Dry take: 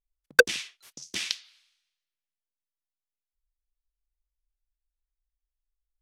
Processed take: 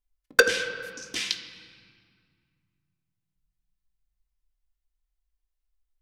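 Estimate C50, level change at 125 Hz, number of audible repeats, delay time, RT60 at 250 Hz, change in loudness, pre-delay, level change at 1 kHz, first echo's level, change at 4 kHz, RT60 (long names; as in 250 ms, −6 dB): 9.5 dB, +2.5 dB, no echo audible, no echo audible, 2.9 s, +0.5 dB, 3 ms, +3.0 dB, no echo audible, +2.0 dB, 2.1 s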